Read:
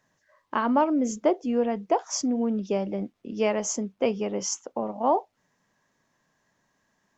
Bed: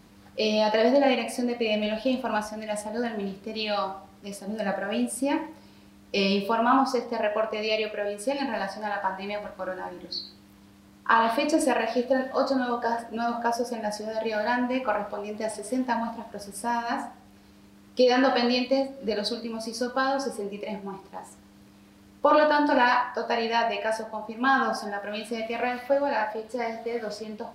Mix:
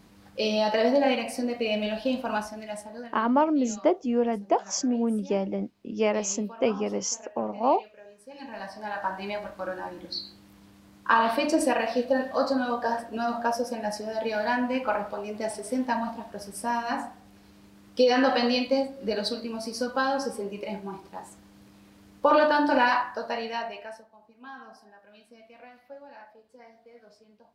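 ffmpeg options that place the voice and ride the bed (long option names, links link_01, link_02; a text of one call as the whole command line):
ffmpeg -i stem1.wav -i stem2.wav -filter_complex "[0:a]adelay=2600,volume=0dB[link_01];[1:a]volume=17.5dB,afade=type=out:start_time=2.38:duration=0.83:silence=0.125893,afade=type=in:start_time=8.29:duration=0.92:silence=0.112202,afade=type=out:start_time=22.8:duration=1.28:silence=0.0891251[link_02];[link_01][link_02]amix=inputs=2:normalize=0" out.wav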